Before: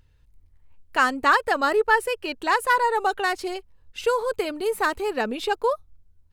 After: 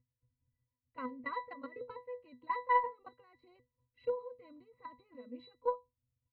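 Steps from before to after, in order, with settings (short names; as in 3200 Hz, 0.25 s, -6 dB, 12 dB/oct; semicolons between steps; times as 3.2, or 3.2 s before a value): resonant high shelf 4100 Hz -11.5 dB, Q 1.5; level quantiser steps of 19 dB; octave resonator B, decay 0.2 s; added harmonics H 2 -24 dB, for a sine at -17.5 dBFS; gain +1 dB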